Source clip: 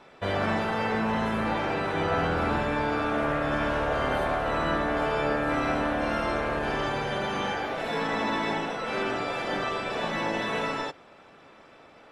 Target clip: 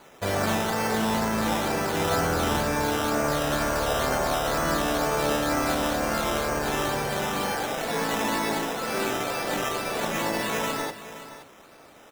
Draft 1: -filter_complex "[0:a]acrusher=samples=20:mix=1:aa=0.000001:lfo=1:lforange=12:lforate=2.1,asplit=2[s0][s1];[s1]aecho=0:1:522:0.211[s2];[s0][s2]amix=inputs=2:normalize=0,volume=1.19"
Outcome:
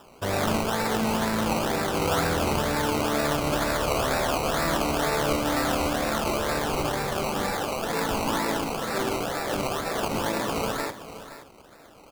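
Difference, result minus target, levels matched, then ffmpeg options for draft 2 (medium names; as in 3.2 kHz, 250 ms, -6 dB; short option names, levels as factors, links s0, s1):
decimation with a swept rate: distortion +9 dB
-filter_complex "[0:a]acrusher=samples=8:mix=1:aa=0.000001:lfo=1:lforange=4.8:lforate=2.1,asplit=2[s0][s1];[s1]aecho=0:1:522:0.211[s2];[s0][s2]amix=inputs=2:normalize=0,volume=1.19"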